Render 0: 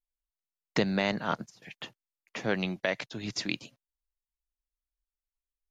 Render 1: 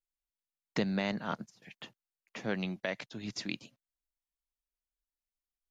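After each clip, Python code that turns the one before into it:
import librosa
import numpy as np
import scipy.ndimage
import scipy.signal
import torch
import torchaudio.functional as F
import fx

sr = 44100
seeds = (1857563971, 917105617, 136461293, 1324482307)

y = fx.peak_eq(x, sr, hz=210.0, db=4.0, octaves=0.62)
y = y * 10.0 ** (-6.0 / 20.0)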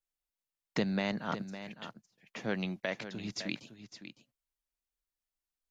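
y = x + 10.0 ** (-11.5 / 20.0) * np.pad(x, (int(558 * sr / 1000.0), 0))[:len(x)]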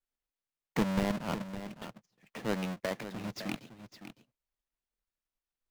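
y = fx.halfwave_hold(x, sr)
y = fx.high_shelf(y, sr, hz=5000.0, db=-9.0)
y = y * 10.0 ** (-3.0 / 20.0)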